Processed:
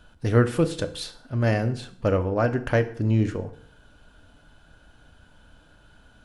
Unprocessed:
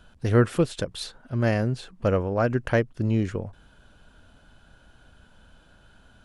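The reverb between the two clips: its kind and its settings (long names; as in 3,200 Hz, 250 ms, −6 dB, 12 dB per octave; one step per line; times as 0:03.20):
feedback delay network reverb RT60 0.61 s, low-frequency decay 1×, high-frequency decay 0.8×, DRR 8 dB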